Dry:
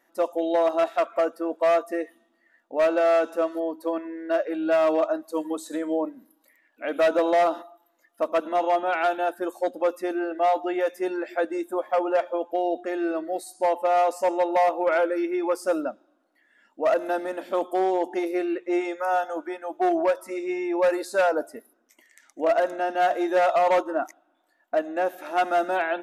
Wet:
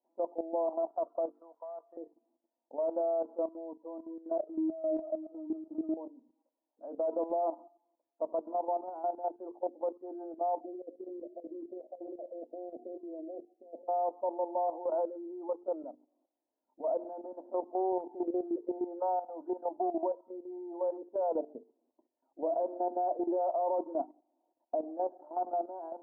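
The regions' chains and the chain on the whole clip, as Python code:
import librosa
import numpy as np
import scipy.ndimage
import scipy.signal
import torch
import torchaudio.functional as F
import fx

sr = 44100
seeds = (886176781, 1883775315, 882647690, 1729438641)

y = fx.chain(x, sr, fx.crossing_spikes(level_db=-26.5),
    fx.highpass(hz=1200.0, slope=12), at=(1.3, 1.97))
y = fx.chain(y, sr, fx.power_curve(exponent=0.35),
    fx.octave_resonator(note='D#', decay_s=0.16), at=(4.41, 5.97))
y = fx.chain(y, sr, fx.steep_lowpass(hz=660.0, slope=72),
    fx.over_compress(threshold_db=-30.0, ratio=-0.5), at=(10.6, 13.88))
y = fx.chain(y, sr, fx.low_shelf(hz=95.0, db=10.5),
    fx.band_squash(depth_pct=100), at=(18.2, 20.19))
y = fx.chain(y, sr, fx.highpass(hz=260.0, slope=12),
    fx.low_shelf(hz=400.0, db=11.0), at=(21.08, 24.84))
y = scipy.signal.sosfilt(scipy.signal.cheby1(4, 1.0, [240.0, 960.0], 'bandpass', fs=sr, output='sos'), y)
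y = fx.hum_notches(y, sr, base_hz=50, count=9)
y = fx.level_steps(y, sr, step_db=12)
y = y * librosa.db_to_amplitude(-6.0)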